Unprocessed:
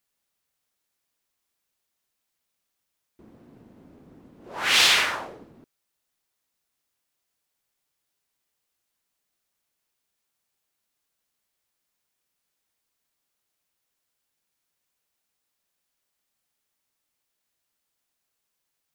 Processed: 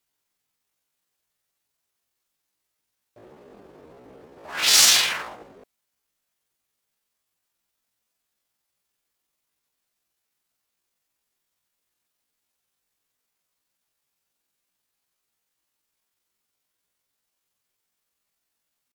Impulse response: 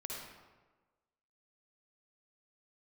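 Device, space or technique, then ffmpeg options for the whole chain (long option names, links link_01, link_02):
chipmunk voice: -af "asetrate=74167,aresample=44100,atempo=0.594604,volume=3.5dB"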